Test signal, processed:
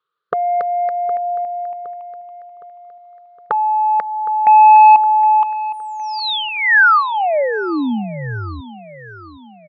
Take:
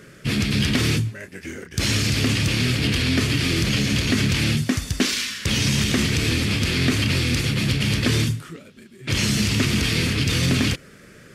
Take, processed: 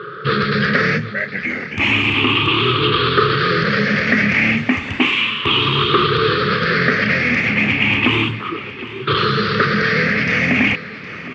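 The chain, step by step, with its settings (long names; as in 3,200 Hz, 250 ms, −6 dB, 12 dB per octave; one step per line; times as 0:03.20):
rippled gain that drifts along the octave scale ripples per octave 0.62, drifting +0.33 Hz, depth 17 dB
low-shelf EQ 230 Hz −11 dB
in parallel at −2 dB: downward compressor, threshold −29 dBFS
on the sum: soft clipping −9 dBFS
loudspeaker in its box 120–3,000 Hz, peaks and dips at 270 Hz −4 dB, 430 Hz +5 dB, 670 Hz −6 dB, 1,200 Hz +10 dB
on a send: repeating echo 764 ms, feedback 48%, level −16 dB
on the sum: level +6 dB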